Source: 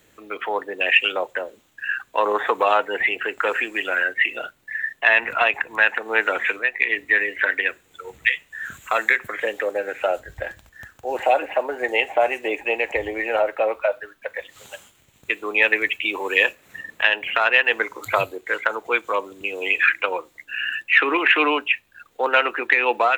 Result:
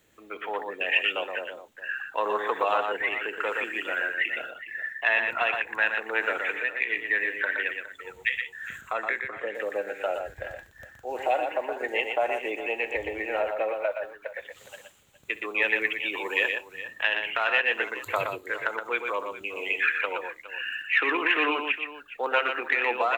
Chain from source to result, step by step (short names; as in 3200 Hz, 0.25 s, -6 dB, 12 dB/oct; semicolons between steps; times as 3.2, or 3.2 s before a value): 8.81–9.55 LPF 1700 Hz 6 dB/oct; on a send: tapped delay 65/120/414 ms -19/-5.5/-15.5 dB; on the sum: gain -7.5 dB